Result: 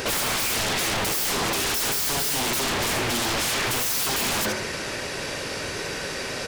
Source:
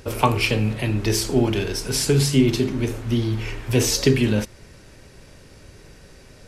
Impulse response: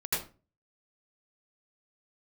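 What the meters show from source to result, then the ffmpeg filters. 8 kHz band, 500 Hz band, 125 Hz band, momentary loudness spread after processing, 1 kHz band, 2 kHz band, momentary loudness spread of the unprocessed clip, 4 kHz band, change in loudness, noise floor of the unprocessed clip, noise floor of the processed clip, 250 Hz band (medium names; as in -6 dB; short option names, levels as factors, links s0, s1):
+3.0 dB, -6.0 dB, -14.0 dB, 7 LU, +1.0 dB, +4.0 dB, 7 LU, +3.0 dB, -2.5 dB, -47 dBFS, -31 dBFS, -10.5 dB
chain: -filter_complex "[0:a]bandreject=f=62.05:t=h:w=4,bandreject=f=124.1:t=h:w=4,bandreject=f=186.15:t=h:w=4,bandreject=f=248.2:t=h:w=4,bandreject=f=310.25:t=h:w=4,bandreject=f=372.3:t=h:w=4,bandreject=f=434.35:t=h:w=4,bandreject=f=496.4:t=h:w=4,bandreject=f=558.45:t=h:w=4,bandreject=f=620.5:t=h:w=4,bandreject=f=682.55:t=h:w=4,bandreject=f=744.6:t=h:w=4,bandreject=f=806.65:t=h:w=4,bandreject=f=868.7:t=h:w=4,bandreject=f=930.75:t=h:w=4,bandreject=f=992.8:t=h:w=4,bandreject=f=1054.85:t=h:w=4,bandreject=f=1116.9:t=h:w=4,bandreject=f=1178.95:t=h:w=4,bandreject=f=1241:t=h:w=4,bandreject=f=1303.05:t=h:w=4,bandreject=f=1365.1:t=h:w=4,bandreject=f=1427.15:t=h:w=4,bandreject=f=1489.2:t=h:w=4,bandreject=f=1551.25:t=h:w=4,bandreject=f=1613.3:t=h:w=4,bandreject=f=1675.35:t=h:w=4,bandreject=f=1737.4:t=h:w=4,bandreject=f=1799.45:t=h:w=4,bandreject=f=1861.5:t=h:w=4,bandreject=f=1923.55:t=h:w=4,bandreject=f=1985.6:t=h:w=4,bandreject=f=2047.65:t=h:w=4,bandreject=f=2109.7:t=h:w=4,bandreject=f=2171.75:t=h:w=4,bandreject=f=2233.8:t=h:w=4,bandreject=f=2295.85:t=h:w=4,bandreject=f=2357.9:t=h:w=4,bandreject=f=2419.95:t=h:w=4,asplit=2[s0][s1];[s1]highpass=f=720:p=1,volume=28.2,asoftclip=type=tanh:threshold=0.668[s2];[s0][s2]amix=inputs=2:normalize=0,lowpass=f=5100:p=1,volume=0.501,asplit=2[s3][s4];[s4]aecho=0:1:75|150|225:0.237|0.064|0.0173[s5];[s3][s5]amix=inputs=2:normalize=0,aeval=exprs='0.1*(abs(mod(val(0)/0.1+3,4)-2)-1)':c=same"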